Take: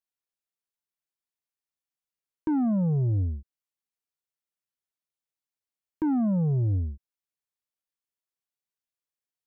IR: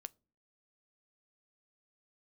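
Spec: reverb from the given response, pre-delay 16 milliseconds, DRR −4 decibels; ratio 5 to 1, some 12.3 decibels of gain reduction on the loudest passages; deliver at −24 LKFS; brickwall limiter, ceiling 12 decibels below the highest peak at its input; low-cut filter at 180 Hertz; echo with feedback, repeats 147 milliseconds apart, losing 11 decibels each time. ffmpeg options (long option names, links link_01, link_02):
-filter_complex "[0:a]highpass=180,acompressor=threshold=-37dB:ratio=5,alimiter=level_in=11.5dB:limit=-24dB:level=0:latency=1,volume=-11.5dB,aecho=1:1:147|294|441:0.282|0.0789|0.0221,asplit=2[link_01][link_02];[1:a]atrim=start_sample=2205,adelay=16[link_03];[link_02][link_03]afir=irnorm=-1:irlink=0,volume=9.5dB[link_04];[link_01][link_04]amix=inputs=2:normalize=0,volume=13dB"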